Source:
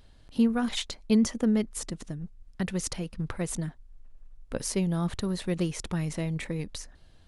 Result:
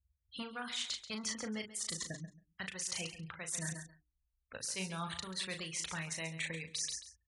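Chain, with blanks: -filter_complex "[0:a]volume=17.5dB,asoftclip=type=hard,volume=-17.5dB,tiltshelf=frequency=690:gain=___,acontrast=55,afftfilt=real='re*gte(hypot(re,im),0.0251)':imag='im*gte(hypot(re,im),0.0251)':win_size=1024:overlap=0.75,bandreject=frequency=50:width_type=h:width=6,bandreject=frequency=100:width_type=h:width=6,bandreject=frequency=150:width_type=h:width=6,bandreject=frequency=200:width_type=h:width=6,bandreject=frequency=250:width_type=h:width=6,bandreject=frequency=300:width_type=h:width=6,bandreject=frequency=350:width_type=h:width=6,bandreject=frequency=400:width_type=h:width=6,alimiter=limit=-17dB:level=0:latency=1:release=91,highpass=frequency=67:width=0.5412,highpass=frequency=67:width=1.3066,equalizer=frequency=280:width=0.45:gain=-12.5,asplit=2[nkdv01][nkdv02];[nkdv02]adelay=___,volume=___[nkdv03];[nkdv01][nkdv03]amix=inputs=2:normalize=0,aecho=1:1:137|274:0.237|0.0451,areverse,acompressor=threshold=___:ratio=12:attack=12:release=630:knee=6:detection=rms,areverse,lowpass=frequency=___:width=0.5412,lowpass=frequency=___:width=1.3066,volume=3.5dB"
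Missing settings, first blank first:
-6, 37, -7dB, -38dB, 10k, 10k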